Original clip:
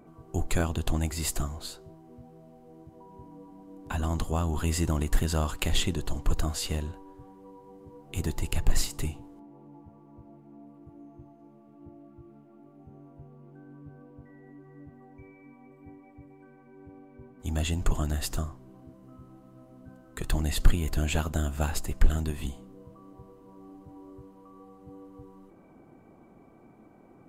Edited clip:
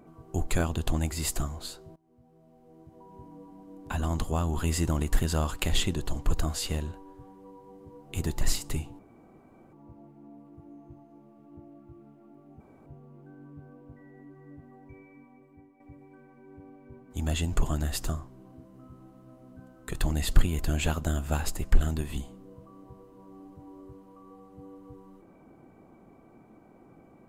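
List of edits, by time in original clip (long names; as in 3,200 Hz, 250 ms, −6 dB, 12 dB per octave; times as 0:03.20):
0:01.96–0:03.17: fade in, from −21 dB
0:08.41–0:08.70: remove
0:09.28–0:10.02: fill with room tone
0:12.89–0:13.15: fill with room tone
0:15.34–0:16.09: fade out, to −10 dB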